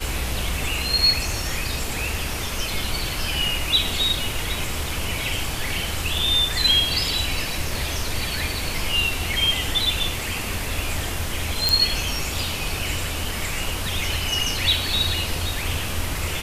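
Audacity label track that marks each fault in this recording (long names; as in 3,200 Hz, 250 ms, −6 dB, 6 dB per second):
11.690000	11.690000	click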